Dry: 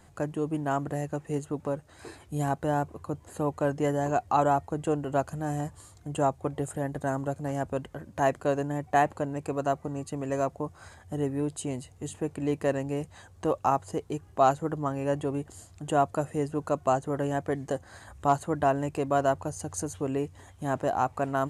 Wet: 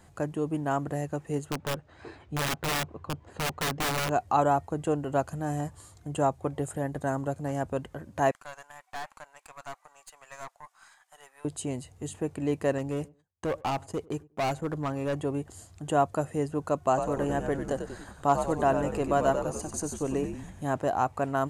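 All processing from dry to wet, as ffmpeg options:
-filter_complex "[0:a]asettb=1/sr,asplit=3[a][b][c];[a]atrim=end=1.514[d];[b]atrim=start=1.51:end=4.11,asetpts=PTS-STARTPTS,afade=t=in:d=0.004:c=qsin,afade=t=out:st=2.596:d=0.004:c=qsin,lowpass=3.5k,aeval=exprs='(mod(15.8*val(0)+1,2)-1)/15.8':c=same[e];[c]atrim=start=4.106[f];[d][e]acrossfade=d=0.004:c1=hsin:c2=qsin[g];[g][f]acrossfade=d=0.004:c1=qsin:c2=hsin,asettb=1/sr,asplit=3[h][i][j];[h]atrim=end=8.314[k];[i]atrim=start=8.31:end=11.45,asetpts=PTS-STARTPTS,afade=t=in:d=0.004:c=qsin,afade=t=out:st=3.136:d=0.004:c=qsin,highpass=f=900:w=0.5412,highpass=f=900:w=1.3066,aeval=exprs='(tanh(50.1*val(0)+0.75)-tanh(0.75))/50.1':c=same[l];[j]atrim=start=11.446[m];[k][l]acrossfade=d=0.004:c1=hsin:c2=qsin[n];[n][m]acrossfade=d=0.004:c1=qsin:c2=hsin,asettb=1/sr,asplit=3[o][p][q];[o]atrim=end=12.784[r];[p]atrim=start=12.78:end=15.15,asetpts=PTS-STARTPTS,afade=t=in:d=0.004:c=qsin,afade=t=out:st=2.366:d=0.004:c=qsin,agate=range=-37dB:threshold=-46dB:ratio=16:release=100:detection=peak,asoftclip=type=hard:threshold=-25.5dB,asplit=2[s][t];[t]adelay=98,lowpass=f=930:p=1,volume=-22.5dB,asplit=2[u][v];[v]adelay=98,lowpass=f=930:p=1,volume=0.24[w];[s][u][w]amix=inputs=3:normalize=0,atrim=end_sample=104517[x];[q]atrim=start=15.146[y];[r][x]acrossfade=d=0.004:c1=hsin:c2=qsin[z];[z][y]acrossfade=d=0.004:c1=qsin:c2=hsin,asettb=1/sr,asplit=3[aa][ab][ac];[aa]atrim=end=16.884[ad];[ab]atrim=start=16.88:end=20.63,asetpts=PTS-STARTPTS,afade=t=in:d=0.004:c=qsin,afade=t=out:st=3.746:d=0.004:c=qsin,equalizer=f=68:w=0.92:g=-6.5,asplit=8[ae][af][ag][ah][ai][aj][ak][al];[af]adelay=94,afreqshift=-82,volume=-7dB[am];[ag]adelay=188,afreqshift=-164,volume=-12dB[an];[ah]adelay=282,afreqshift=-246,volume=-17.1dB[ao];[ai]adelay=376,afreqshift=-328,volume=-22.1dB[ap];[aj]adelay=470,afreqshift=-410,volume=-27.1dB[aq];[ak]adelay=564,afreqshift=-492,volume=-32.2dB[ar];[al]adelay=658,afreqshift=-574,volume=-37.2dB[as];[ae][am][an][ao][ap][aq][ar][as]amix=inputs=8:normalize=0,atrim=end_sample=165375[at];[ac]atrim=start=20.626[au];[ad][at]acrossfade=d=0.004:c1=hsin:c2=qsin[av];[av][au]acrossfade=d=0.004:c1=qsin:c2=hsin"

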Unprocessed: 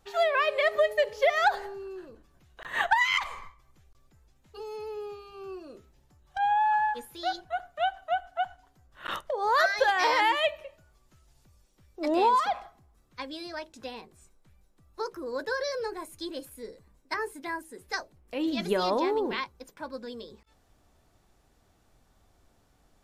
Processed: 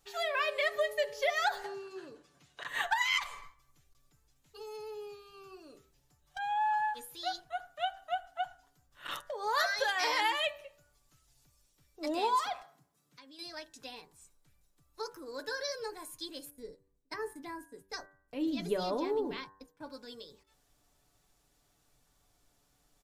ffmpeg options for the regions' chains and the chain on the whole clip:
-filter_complex "[0:a]asettb=1/sr,asplit=3[a][b][c];[a]atrim=end=1.644[d];[b]atrim=start=1.64:end=2.68,asetpts=PTS-STARTPTS,afade=t=in:d=0.004:c=qsin,afade=t=out:st=1.036:d=0.004:c=qsin,acontrast=85,highpass=140,lowpass=7.8k[e];[c]atrim=start=2.676[f];[d][e]acrossfade=d=0.004:c1=hsin:c2=qsin[g];[g][f]acrossfade=d=0.004:c1=qsin:c2=hsin,asettb=1/sr,asplit=3[h][i][j];[h]atrim=end=12.624[k];[i]atrim=start=12.62:end=13.39,asetpts=PTS-STARTPTS,afade=t=in:d=0.004:c=qsin,afade=t=out:st=0.766:d=0.004:c=qsin,highpass=f=150:w=0.5412,highpass=f=150:w=1.3066,lowshelf=f=190:g=11,acompressor=threshold=-46dB:ratio=8:attack=3.2:release=140:knee=1:detection=peak[l];[j]atrim=start=13.386[m];[k][l]acrossfade=d=0.004:c1=hsin:c2=qsin[n];[n][m]acrossfade=d=0.004:c1=qsin:c2=hsin,asettb=1/sr,asplit=3[o][p][q];[o]atrim=end=16.504[r];[p]atrim=start=16.5:end=19.87,asetpts=PTS-STARTPTS,afade=t=in:d=0.004:c=qsin,afade=t=out:st=3.366:d=0.004:c=qsin,tiltshelf=f=660:g=6.5,agate=range=-12dB:threshold=-48dB:ratio=16:release=100:detection=peak[s];[q]atrim=start=19.866[t];[r][s]acrossfade=d=0.004:c1=hsin:c2=qsin[u];[u][t]acrossfade=d=0.004:c1=qsin:c2=hsin,highshelf=f=2.9k:g=11,aecho=1:1:6.9:0.43,bandreject=f=96.85:t=h:w=4,bandreject=f=193.7:t=h:w=4,bandreject=f=290.55:t=h:w=4,bandreject=f=387.4:t=h:w=4,bandreject=f=484.25:t=h:w=4,bandreject=f=581.1:t=h:w=4,bandreject=f=677.95:t=h:w=4,bandreject=f=774.8:t=h:w=4,bandreject=f=871.65:t=h:w=4,bandreject=f=968.5:t=h:w=4,bandreject=f=1.06535k:t=h:w=4,bandreject=f=1.1622k:t=h:w=4,bandreject=f=1.25905k:t=h:w=4,bandreject=f=1.3559k:t=h:w=4,bandreject=f=1.45275k:t=h:w=4,bandreject=f=1.5496k:t=h:w=4,bandreject=f=1.64645k:t=h:w=4,bandreject=f=1.7433k:t=h:w=4,bandreject=f=1.84015k:t=h:w=4,bandreject=f=1.937k:t=h:w=4,volume=-9dB"

